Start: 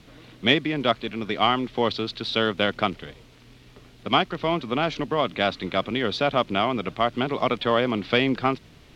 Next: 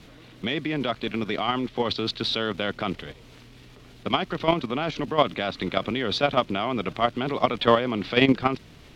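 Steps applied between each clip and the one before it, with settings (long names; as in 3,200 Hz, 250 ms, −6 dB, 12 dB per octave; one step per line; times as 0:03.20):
brickwall limiter −12 dBFS, peak gain reduction 7.5 dB
output level in coarse steps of 11 dB
level +6.5 dB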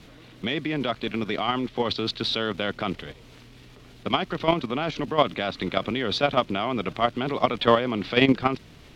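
no processing that can be heard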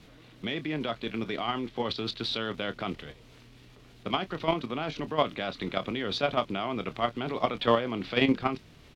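double-tracking delay 26 ms −12.5 dB
level −5.5 dB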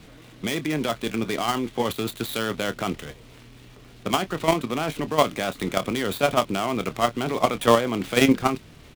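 gap after every zero crossing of 0.1 ms
level +6.5 dB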